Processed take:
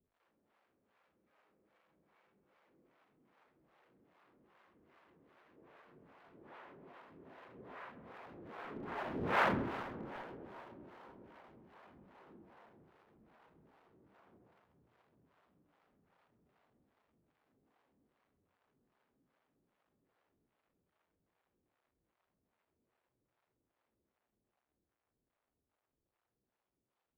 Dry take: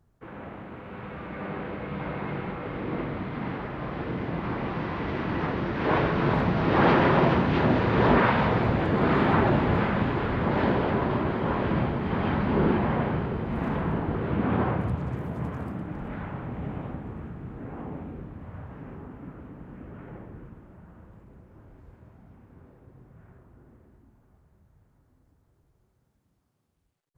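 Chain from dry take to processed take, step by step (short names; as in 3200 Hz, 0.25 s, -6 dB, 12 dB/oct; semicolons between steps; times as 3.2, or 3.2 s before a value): zero-crossing step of -26 dBFS; Doppler pass-by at 9.44, 17 m/s, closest 1.3 m; harmonic tremolo 2.5 Hz, depth 100%, crossover 490 Hz; in parallel at -5 dB: Schmitt trigger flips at -35.5 dBFS; on the sum: three-band isolator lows -12 dB, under 250 Hz, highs -18 dB, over 3700 Hz; darkening echo 0.132 s, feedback 69%, low-pass 2100 Hz, level -15 dB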